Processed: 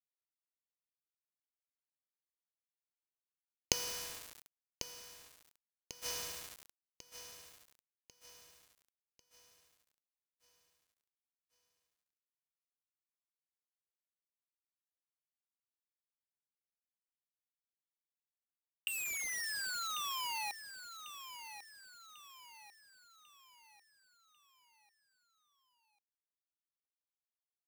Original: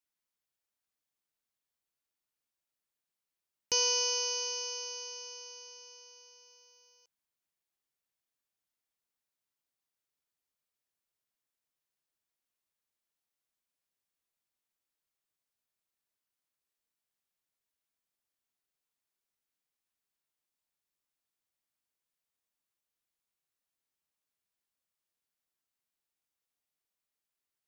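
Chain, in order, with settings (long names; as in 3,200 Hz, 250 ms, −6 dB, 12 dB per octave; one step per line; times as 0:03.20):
sound drawn into the spectrogram fall, 0:18.87–0:20.52, 800–2,800 Hz −28 dBFS
leveller curve on the samples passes 3
gate with flip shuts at −32 dBFS, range −29 dB
bit-depth reduction 8 bits, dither none
repeating echo 1,095 ms, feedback 44%, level −11 dB
level +9 dB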